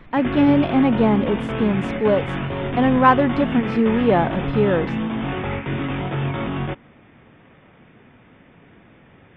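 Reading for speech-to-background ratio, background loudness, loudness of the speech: 6.5 dB, -25.5 LUFS, -19.0 LUFS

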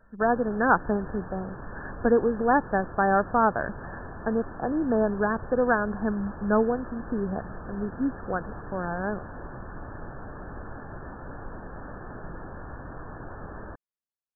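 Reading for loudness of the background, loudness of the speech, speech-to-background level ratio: -41.5 LUFS, -26.5 LUFS, 15.0 dB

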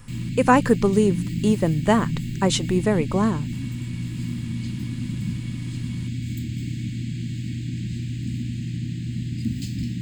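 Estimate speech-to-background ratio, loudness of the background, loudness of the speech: 7.5 dB, -29.0 LUFS, -21.5 LUFS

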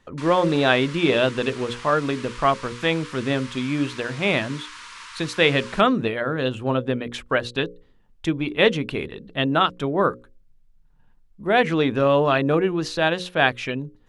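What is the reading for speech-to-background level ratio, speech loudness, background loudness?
17.0 dB, -22.0 LUFS, -39.0 LUFS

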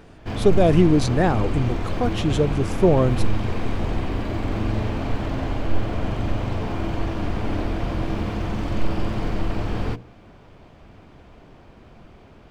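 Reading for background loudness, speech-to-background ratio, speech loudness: -27.0 LUFS, 6.0 dB, -21.0 LUFS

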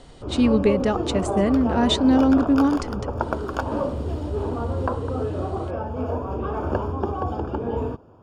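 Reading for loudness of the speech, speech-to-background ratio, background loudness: -20.5 LUFS, 7.0 dB, -27.5 LUFS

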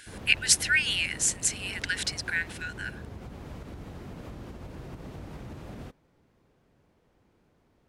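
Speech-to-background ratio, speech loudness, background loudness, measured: 18.0 dB, -25.5 LUFS, -43.5 LUFS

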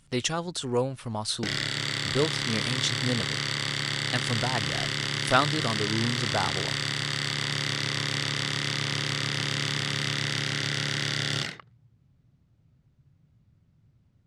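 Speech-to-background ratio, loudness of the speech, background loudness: -2.0 dB, -30.0 LUFS, -28.0 LUFS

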